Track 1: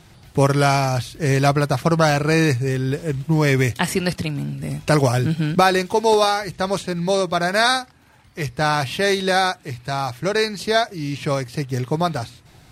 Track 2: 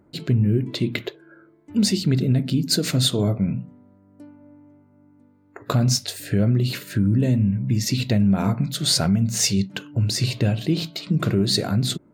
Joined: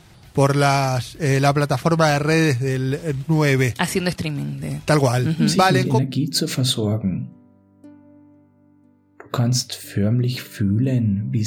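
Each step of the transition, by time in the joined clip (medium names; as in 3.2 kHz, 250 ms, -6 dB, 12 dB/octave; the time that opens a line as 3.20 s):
track 1
5.55 s: go over to track 2 from 1.91 s, crossfade 0.88 s logarithmic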